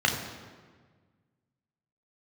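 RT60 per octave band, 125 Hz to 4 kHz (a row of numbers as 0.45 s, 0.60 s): 2.1 s, 1.9 s, 1.6 s, 1.5 s, 1.3 s, 1.1 s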